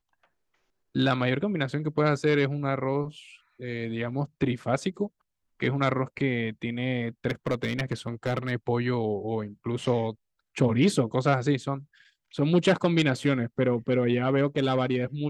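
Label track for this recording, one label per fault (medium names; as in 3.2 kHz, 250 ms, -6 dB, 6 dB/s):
7.290000	8.510000	clipped -20.5 dBFS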